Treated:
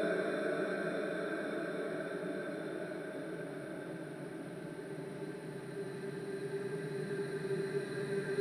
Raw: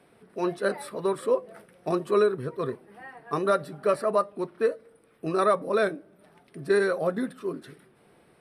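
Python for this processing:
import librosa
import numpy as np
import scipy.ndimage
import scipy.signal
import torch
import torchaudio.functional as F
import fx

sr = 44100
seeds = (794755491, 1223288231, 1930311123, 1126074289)

y = fx.paulstretch(x, sr, seeds[0], factor=38.0, window_s=1.0, from_s=6.16)
y = y * librosa.db_to_amplitude(4.5)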